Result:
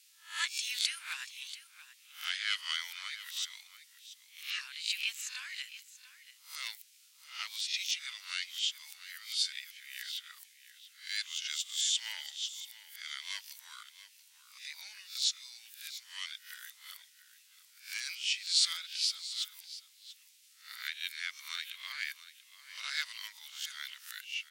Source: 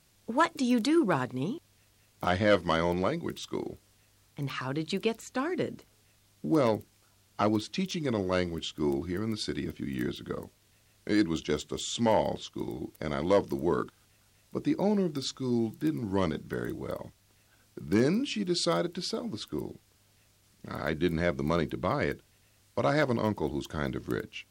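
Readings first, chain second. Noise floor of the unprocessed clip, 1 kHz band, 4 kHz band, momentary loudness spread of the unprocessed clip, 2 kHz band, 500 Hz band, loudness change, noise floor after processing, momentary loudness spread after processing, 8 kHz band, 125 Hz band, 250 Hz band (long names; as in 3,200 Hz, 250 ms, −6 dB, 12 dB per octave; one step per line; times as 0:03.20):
−65 dBFS, −19.5 dB, +5.5 dB, 12 LU, −2.0 dB, below −40 dB, −5.5 dB, −63 dBFS, 20 LU, +6.0 dB, below −40 dB, below −40 dB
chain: peak hold with a rise ahead of every peak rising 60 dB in 0.37 s
inverse Chebyshev high-pass filter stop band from 380 Hz, stop band 80 dB
on a send: single-tap delay 685 ms −15 dB
on the sum: level +3.5 dB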